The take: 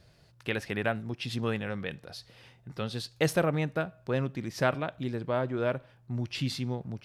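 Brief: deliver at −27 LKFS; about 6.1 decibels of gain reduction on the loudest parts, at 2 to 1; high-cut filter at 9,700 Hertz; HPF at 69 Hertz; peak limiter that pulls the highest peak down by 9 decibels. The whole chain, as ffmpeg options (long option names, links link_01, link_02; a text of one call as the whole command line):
ffmpeg -i in.wav -af "highpass=69,lowpass=9700,acompressor=threshold=-32dB:ratio=2,volume=11.5dB,alimiter=limit=-15.5dB:level=0:latency=1" out.wav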